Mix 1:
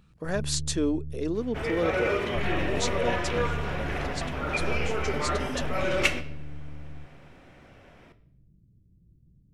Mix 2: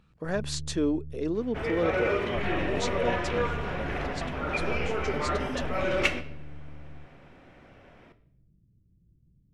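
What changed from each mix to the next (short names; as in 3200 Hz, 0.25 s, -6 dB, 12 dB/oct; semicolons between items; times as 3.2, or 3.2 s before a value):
first sound -4.0 dB; master: add high shelf 5600 Hz -10.5 dB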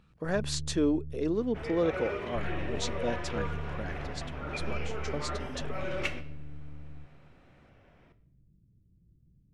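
second sound -8.0 dB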